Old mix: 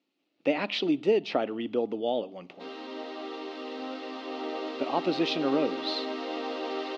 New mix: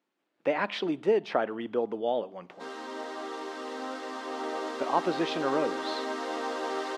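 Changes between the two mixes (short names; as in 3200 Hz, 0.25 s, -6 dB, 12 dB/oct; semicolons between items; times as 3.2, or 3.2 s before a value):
speech: add BPF 270–3400 Hz; master: remove speaker cabinet 250–4800 Hz, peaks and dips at 280 Hz +7 dB, 1000 Hz -7 dB, 1600 Hz -9 dB, 2700 Hz +6 dB, 4100 Hz +3 dB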